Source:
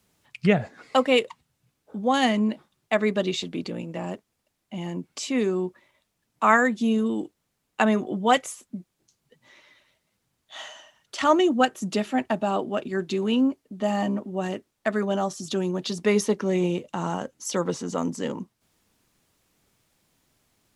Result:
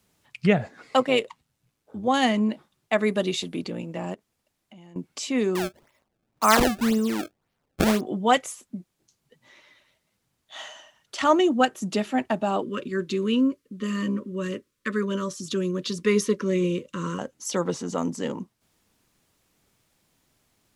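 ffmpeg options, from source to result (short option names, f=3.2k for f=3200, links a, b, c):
-filter_complex "[0:a]asettb=1/sr,asplit=3[a][b][c];[a]atrim=end=1.004[d];[b]atrim=start=1:end=2.08,asetpts=PTS-STARTPTS,afade=t=in:d=0.004:c=qsin,afade=t=out:st=1.076:d=0.004:c=qsin,tremolo=f=110:d=0.462[e];[c]atrim=start=2.076[f];[d][e]acrossfade=d=0.004:c1=hsin:c2=qsin[g];[g][f]acrossfade=d=0.004:c1=qsin:c2=hsin,asettb=1/sr,asplit=3[h][i][j];[h]atrim=end=2.984[k];[i]atrim=start=2.98:end=3.62,asetpts=PTS-STARTPTS,afade=t=in:d=0.004:c=qsin,afade=t=out:st=0.636:d=0.004:c=qsin,equalizer=f=10k:w=2.2:g=11.5[l];[j]atrim=start=3.616[m];[k][l]acrossfade=d=0.004:c1=hsin:c2=qsin[n];[n][m]acrossfade=d=0.004:c1=qsin:c2=hsin,asettb=1/sr,asplit=3[o][p][q];[o]atrim=end=4.144[r];[p]atrim=start=4.14:end=4.96,asetpts=PTS-STARTPTS,afade=t=in:d=0.004:c=qsin,afade=t=out:st=0.816:d=0.004:c=qsin,acompressor=threshold=-46dB:ratio=6:attack=3.2:release=140:knee=1:detection=peak[s];[q]atrim=start=4.956[t];[r][s]acrossfade=d=0.004:c1=hsin:c2=qsin[u];[u][t]acrossfade=d=0.004:c1=qsin:c2=hsin,asettb=1/sr,asplit=3[v][w][x];[v]atrim=end=5.554[y];[w]atrim=start=5.55:end=8.01,asetpts=PTS-STARTPTS,afade=t=in:d=0.004:c=qsin,afade=t=out:st=2.456:d=0.004:c=qsin,acrusher=samples=26:mix=1:aa=0.000001:lfo=1:lforange=41.6:lforate=1.9[z];[x]atrim=start=8.006[aa];[y][z]acrossfade=d=0.004:c1=hsin:c2=qsin[ab];[ab][aa]acrossfade=d=0.004:c1=qsin:c2=hsin,asettb=1/sr,asplit=3[ac][ad][ae];[ac]atrim=end=12.624[af];[ad]atrim=start=12.62:end=17.19,asetpts=PTS-STARTPTS,afade=t=in:d=0.004:c=qsin,afade=t=out:st=4.566:d=0.004:c=qsin,asuperstop=centerf=750:order=20:qfactor=1.9[ag];[ae]atrim=start=17.186[ah];[af][ag]acrossfade=d=0.004:c1=hsin:c2=qsin[ai];[ai][ah]acrossfade=d=0.004:c1=qsin:c2=hsin"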